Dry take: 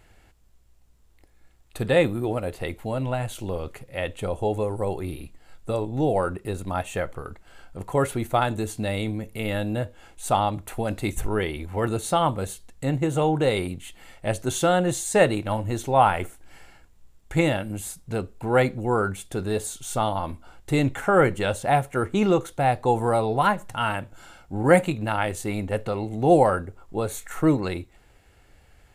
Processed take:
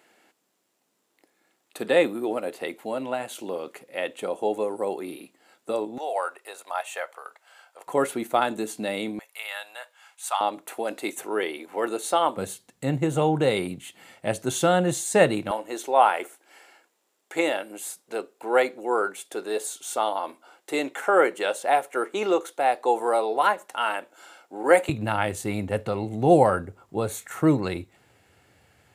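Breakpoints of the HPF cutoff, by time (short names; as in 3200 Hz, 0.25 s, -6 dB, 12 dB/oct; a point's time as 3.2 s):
HPF 24 dB/oct
240 Hz
from 5.98 s 620 Hz
from 7.87 s 210 Hz
from 9.19 s 880 Hz
from 10.41 s 300 Hz
from 12.37 s 130 Hz
from 15.51 s 340 Hz
from 24.89 s 92 Hz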